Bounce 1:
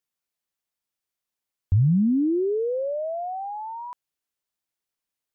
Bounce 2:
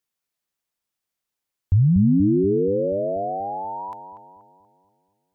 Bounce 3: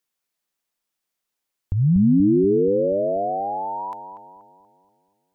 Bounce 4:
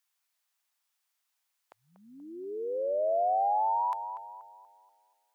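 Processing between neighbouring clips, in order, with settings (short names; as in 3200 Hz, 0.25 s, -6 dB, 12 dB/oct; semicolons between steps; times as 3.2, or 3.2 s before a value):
darkening echo 0.24 s, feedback 59%, low-pass 850 Hz, level -6 dB; gain +2.5 dB
bell 89 Hz -11 dB 0.91 oct; gain +2.5 dB
HPF 730 Hz 24 dB/oct; gain +1.5 dB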